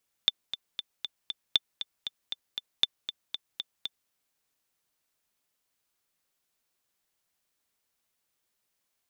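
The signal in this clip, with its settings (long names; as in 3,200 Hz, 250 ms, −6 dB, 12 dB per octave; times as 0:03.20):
click track 235 BPM, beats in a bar 5, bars 3, 3,540 Hz, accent 11.5 dB −8 dBFS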